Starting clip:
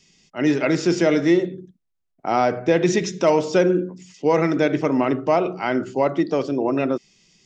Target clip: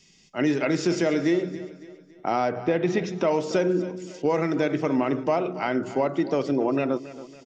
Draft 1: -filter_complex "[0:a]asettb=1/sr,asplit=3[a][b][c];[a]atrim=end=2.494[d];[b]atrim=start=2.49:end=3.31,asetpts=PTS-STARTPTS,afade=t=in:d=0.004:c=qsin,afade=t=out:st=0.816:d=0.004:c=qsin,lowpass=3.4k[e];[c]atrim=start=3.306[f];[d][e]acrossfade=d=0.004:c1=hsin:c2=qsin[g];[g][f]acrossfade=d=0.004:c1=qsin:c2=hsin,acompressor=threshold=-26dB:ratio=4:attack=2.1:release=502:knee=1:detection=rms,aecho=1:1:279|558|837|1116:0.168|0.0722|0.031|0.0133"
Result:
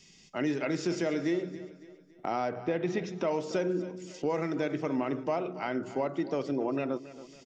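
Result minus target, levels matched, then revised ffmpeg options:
compressor: peak gain reduction +7 dB
-filter_complex "[0:a]asettb=1/sr,asplit=3[a][b][c];[a]atrim=end=2.494[d];[b]atrim=start=2.49:end=3.31,asetpts=PTS-STARTPTS,afade=t=in:d=0.004:c=qsin,afade=t=out:st=0.816:d=0.004:c=qsin,lowpass=3.4k[e];[c]atrim=start=3.306[f];[d][e]acrossfade=d=0.004:c1=hsin:c2=qsin[g];[g][f]acrossfade=d=0.004:c1=qsin:c2=hsin,acompressor=threshold=-16.5dB:ratio=4:attack=2.1:release=502:knee=1:detection=rms,aecho=1:1:279|558|837|1116:0.168|0.0722|0.031|0.0133"

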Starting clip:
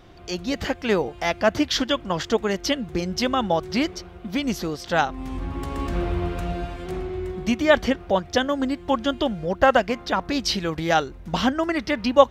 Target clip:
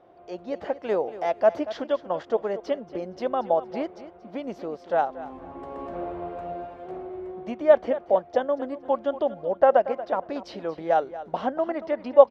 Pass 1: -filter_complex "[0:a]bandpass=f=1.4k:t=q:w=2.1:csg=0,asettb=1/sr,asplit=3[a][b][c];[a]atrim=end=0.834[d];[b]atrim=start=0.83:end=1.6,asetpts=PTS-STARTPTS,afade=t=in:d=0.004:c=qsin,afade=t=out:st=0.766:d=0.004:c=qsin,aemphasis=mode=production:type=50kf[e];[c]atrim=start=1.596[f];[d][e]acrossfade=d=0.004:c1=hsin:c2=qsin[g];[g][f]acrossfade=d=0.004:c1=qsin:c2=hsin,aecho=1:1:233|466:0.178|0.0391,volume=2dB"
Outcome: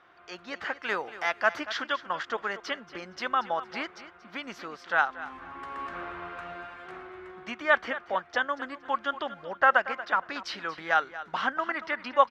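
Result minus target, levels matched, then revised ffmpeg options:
500 Hz band -8.5 dB
-filter_complex "[0:a]bandpass=f=610:t=q:w=2.1:csg=0,asettb=1/sr,asplit=3[a][b][c];[a]atrim=end=0.834[d];[b]atrim=start=0.83:end=1.6,asetpts=PTS-STARTPTS,afade=t=in:d=0.004:c=qsin,afade=t=out:st=0.766:d=0.004:c=qsin,aemphasis=mode=production:type=50kf[e];[c]atrim=start=1.596[f];[d][e]acrossfade=d=0.004:c1=hsin:c2=qsin[g];[g][f]acrossfade=d=0.004:c1=qsin:c2=hsin,aecho=1:1:233|466:0.178|0.0391,volume=2dB"

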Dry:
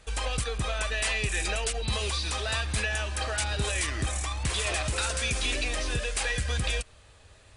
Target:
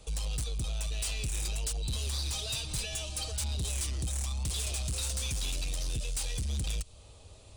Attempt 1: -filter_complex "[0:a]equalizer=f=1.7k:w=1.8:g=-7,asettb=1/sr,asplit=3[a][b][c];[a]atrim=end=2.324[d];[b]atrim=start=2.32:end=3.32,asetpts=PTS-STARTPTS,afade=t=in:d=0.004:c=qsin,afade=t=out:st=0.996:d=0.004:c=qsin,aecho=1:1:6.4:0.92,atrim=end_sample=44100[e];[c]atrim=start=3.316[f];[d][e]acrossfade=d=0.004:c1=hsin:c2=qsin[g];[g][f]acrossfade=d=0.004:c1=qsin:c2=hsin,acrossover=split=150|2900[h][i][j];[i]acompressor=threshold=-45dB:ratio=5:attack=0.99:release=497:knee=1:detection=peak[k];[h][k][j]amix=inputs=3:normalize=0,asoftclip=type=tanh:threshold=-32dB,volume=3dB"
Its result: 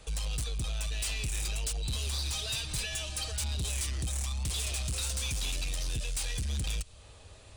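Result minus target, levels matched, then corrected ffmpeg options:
2000 Hz band +3.0 dB
-filter_complex "[0:a]equalizer=f=1.7k:w=1.8:g=-18,asettb=1/sr,asplit=3[a][b][c];[a]atrim=end=2.324[d];[b]atrim=start=2.32:end=3.32,asetpts=PTS-STARTPTS,afade=t=in:d=0.004:c=qsin,afade=t=out:st=0.996:d=0.004:c=qsin,aecho=1:1:6.4:0.92,atrim=end_sample=44100[e];[c]atrim=start=3.316[f];[d][e]acrossfade=d=0.004:c1=hsin:c2=qsin[g];[g][f]acrossfade=d=0.004:c1=qsin:c2=hsin,acrossover=split=150|2900[h][i][j];[i]acompressor=threshold=-45dB:ratio=5:attack=0.99:release=497:knee=1:detection=peak[k];[h][k][j]amix=inputs=3:normalize=0,asoftclip=type=tanh:threshold=-32dB,volume=3dB"

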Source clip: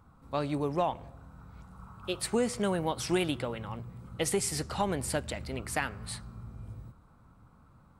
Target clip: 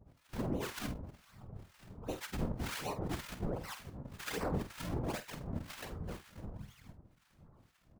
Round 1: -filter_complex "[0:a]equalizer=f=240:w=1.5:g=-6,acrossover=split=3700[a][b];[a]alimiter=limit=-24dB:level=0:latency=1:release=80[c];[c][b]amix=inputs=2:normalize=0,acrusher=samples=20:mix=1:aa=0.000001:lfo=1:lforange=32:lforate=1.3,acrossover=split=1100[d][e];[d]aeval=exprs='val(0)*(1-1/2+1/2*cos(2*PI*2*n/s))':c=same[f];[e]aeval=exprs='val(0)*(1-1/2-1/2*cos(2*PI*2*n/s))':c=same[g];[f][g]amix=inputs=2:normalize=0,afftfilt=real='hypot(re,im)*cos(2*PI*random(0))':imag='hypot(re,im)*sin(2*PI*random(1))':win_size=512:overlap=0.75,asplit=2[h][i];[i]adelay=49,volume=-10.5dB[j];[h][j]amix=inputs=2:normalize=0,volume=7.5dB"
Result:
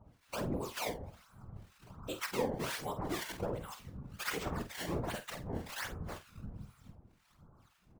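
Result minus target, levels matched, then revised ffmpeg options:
decimation with a swept rate: distortion -8 dB
-filter_complex "[0:a]equalizer=f=240:w=1.5:g=-6,acrossover=split=3700[a][b];[a]alimiter=limit=-24dB:level=0:latency=1:release=80[c];[c][b]amix=inputs=2:normalize=0,acrusher=samples=65:mix=1:aa=0.000001:lfo=1:lforange=104:lforate=1.3,acrossover=split=1100[d][e];[d]aeval=exprs='val(0)*(1-1/2+1/2*cos(2*PI*2*n/s))':c=same[f];[e]aeval=exprs='val(0)*(1-1/2-1/2*cos(2*PI*2*n/s))':c=same[g];[f][g]amix=inputs=2:normalize=0,afftfilt=real='hypot(re,im)*cos(2*PI*random(0))':imag='hypot(re,im)*sin(2*PI*random(1))':win_size=512:overlap=0.75,asplit=2[h][i];[i]adelay=49,volume=-10.5dB[j];[h][j]amix=inputs=2:normalize=0,volume=7.5dB"

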